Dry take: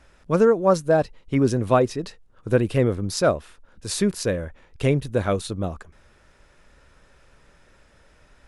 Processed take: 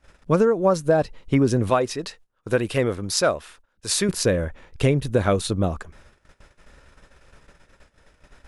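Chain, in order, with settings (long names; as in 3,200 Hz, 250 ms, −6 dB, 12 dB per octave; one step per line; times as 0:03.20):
0:01.70–0:04.09: low-shelf EQ 480 Hz −10.5 dB
noise gate −53 dBFS, range −17 dB
downward compressor 6 to 1, threshold −20 dBFS, peak gain reduction 8 dB
level +5.5 dB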